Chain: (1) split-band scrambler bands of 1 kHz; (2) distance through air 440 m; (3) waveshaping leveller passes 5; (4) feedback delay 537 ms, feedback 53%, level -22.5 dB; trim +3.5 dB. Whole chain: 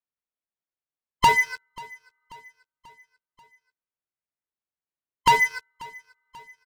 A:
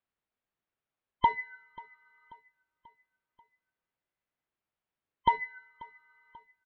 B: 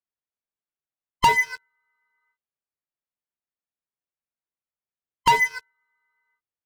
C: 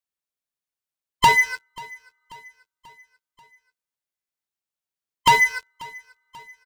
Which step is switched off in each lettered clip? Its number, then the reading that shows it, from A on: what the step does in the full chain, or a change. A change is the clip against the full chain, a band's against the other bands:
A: 3, crest factor change +9.5 dB; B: 4, echo-to-direct -21.0 dB to none; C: 2, 8 kHz band +2.0 dB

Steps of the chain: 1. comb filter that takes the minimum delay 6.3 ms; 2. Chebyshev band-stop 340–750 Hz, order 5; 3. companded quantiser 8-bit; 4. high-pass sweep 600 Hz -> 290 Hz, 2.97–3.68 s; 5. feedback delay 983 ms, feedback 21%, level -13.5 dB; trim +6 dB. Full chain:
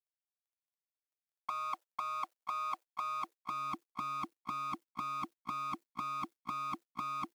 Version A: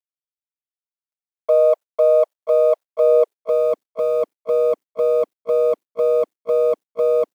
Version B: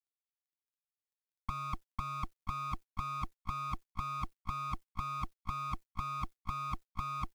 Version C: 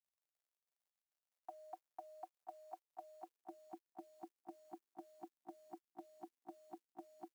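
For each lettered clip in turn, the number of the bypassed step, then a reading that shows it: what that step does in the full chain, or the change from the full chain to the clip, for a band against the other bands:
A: 2, momentary loudness spread change +3 LU; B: 4, 125 Hz band +14.0 dB; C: 1, 500 Hz band +23.0 dB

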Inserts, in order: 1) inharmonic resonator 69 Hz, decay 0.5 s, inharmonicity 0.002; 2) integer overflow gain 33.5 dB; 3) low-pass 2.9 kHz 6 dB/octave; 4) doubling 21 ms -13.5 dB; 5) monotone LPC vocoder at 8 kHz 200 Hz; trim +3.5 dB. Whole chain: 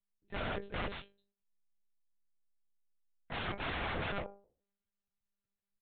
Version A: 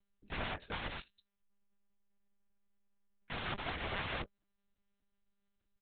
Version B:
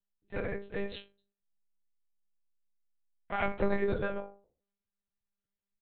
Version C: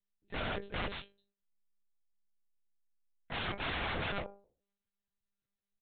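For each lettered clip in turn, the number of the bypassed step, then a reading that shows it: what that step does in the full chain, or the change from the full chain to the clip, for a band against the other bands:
1, 4 kHz band +2.5 dB; 2, 4 kHz band -9.0 dB; 3, 4 kHz band +3.0 dB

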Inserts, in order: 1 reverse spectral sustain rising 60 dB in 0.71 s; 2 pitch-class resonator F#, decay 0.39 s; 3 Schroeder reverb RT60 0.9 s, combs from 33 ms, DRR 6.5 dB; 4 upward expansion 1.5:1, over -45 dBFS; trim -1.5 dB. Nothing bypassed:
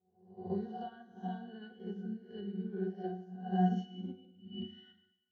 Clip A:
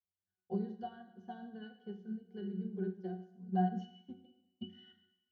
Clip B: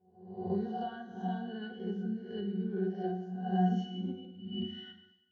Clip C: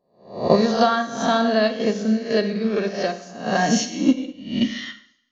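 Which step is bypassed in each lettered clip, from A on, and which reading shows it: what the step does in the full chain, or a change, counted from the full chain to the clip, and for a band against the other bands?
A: 1, loudness change -2.0 LU; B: 4, 2 kHz band +2.5 dB; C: 2, 125 Hz band -12.0 dB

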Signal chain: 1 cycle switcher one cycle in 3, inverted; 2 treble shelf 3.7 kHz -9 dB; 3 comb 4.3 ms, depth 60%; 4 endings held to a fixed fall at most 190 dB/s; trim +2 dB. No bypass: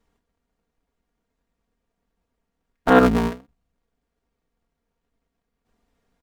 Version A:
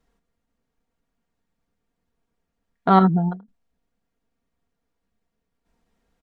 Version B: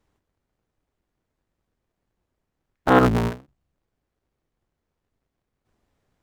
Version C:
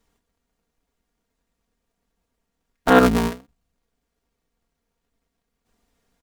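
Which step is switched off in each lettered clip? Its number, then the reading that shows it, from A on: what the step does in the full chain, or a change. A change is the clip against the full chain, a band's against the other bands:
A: 1, 125 Hz band +11.0 dB; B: 3, 125 Hz band +5.5 dB; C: 2, 8 kHz band +7.0 dB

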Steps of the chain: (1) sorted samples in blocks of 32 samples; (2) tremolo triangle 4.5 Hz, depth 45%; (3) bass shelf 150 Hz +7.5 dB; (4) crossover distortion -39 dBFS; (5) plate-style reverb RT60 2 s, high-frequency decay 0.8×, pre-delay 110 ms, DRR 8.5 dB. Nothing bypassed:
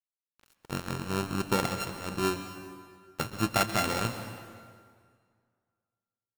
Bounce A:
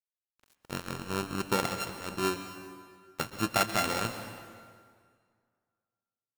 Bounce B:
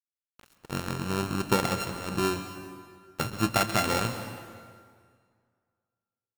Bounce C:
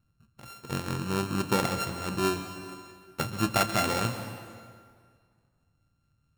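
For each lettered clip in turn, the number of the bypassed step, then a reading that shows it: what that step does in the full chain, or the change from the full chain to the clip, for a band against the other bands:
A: 3, 125 Hz band -4.5 dB; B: 2, loudness change +2.0 LU; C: 4, distortion -13 dB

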